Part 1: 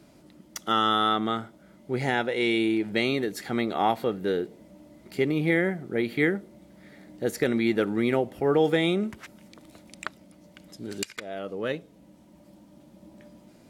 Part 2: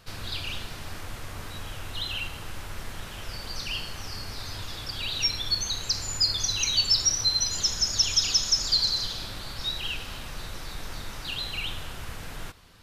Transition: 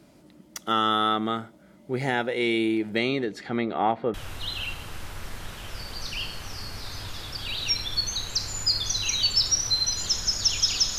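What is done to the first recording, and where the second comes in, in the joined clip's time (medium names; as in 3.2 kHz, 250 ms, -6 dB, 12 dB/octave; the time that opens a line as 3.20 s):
part 1
2.98–4.14 s: low-pass 7.8 kHz -> 1.8 kHz
4.14 s: go over to part 2 from 1.68 s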